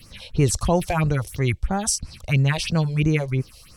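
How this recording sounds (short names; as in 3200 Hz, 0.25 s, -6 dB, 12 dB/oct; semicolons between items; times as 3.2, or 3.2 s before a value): phasing stages 4, 3 Hz, lowest notch 210–3600 Hz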